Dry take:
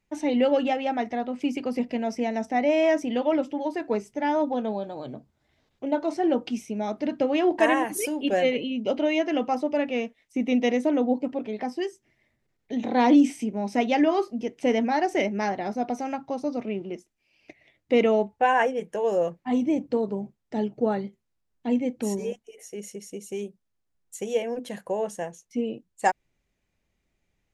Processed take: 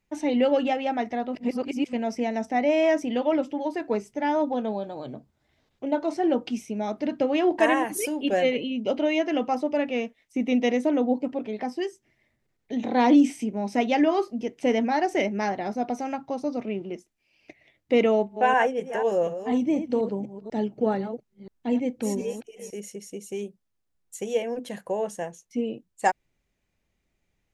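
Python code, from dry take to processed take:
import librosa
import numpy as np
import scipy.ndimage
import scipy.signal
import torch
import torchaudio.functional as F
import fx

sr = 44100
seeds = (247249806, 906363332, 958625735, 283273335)

y = fx.reverse_delay(x, sr, ms=245, wet_db=-10.5, at=(18.05, 22.8))
y = fx.edit(y, sr, fx.reverse_span(start_s=1.35, length_s=0.58), tone=tone)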